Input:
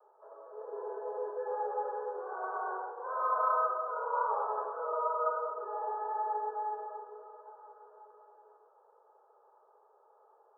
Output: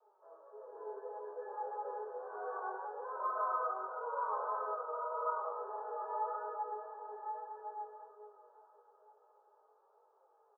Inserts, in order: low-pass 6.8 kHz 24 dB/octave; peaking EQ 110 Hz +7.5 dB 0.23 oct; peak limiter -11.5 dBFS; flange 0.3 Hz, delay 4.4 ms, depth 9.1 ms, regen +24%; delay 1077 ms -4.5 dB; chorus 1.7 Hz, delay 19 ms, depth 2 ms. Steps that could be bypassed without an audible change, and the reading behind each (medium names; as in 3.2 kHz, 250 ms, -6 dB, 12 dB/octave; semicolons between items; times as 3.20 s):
low-pass 6.8 kHz: input has nothing above 1.6 kHz; peaking EQ 110 Hz: input has nothing below 360 Hz; peak limiter -11.5 dBFS: peak at its input -18.0 dBFS